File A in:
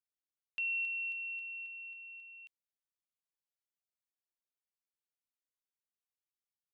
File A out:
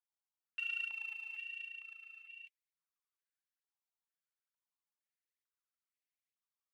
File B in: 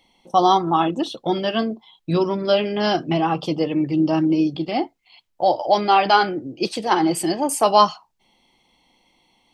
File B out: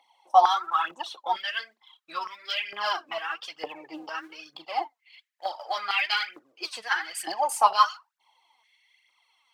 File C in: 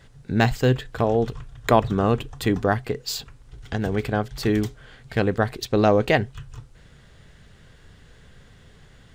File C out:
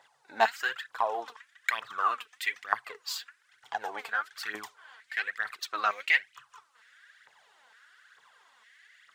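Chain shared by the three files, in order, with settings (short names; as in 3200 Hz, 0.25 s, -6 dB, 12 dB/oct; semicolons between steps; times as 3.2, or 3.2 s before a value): phaser 1.1 Hz, delay 4.7 ms, feedback 63%; stepped high-pass 2.2 Hz 860–2100 Hz; gain -9 dB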